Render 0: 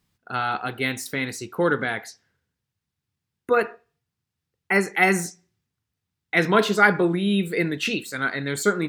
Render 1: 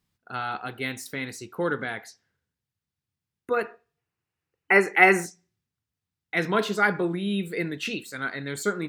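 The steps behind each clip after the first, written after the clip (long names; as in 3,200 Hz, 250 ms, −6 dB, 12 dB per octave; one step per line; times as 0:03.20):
gain on a spectral selection 0:03.98–0:05.25, 290–3,000 Hz +8 dB
level −5.5 dB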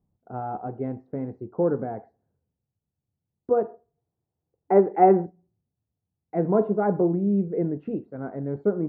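Chebyshev low-pass filter 730 Hz, order 3
level +5.5 dB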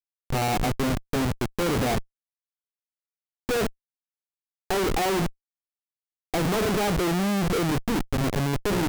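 comparator with hysteresis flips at −34 dBFS
level +2.5 dB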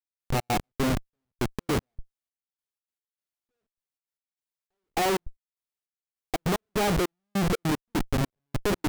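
gate pattern "..xx.x..xxx." 151 BPM −60 dB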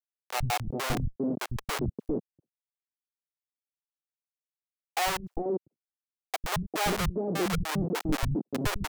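bit-depth reduction 12 bits, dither none
three-band delay without the direct sound highs, lows, mids 100/400 ms, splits 180/560 Hz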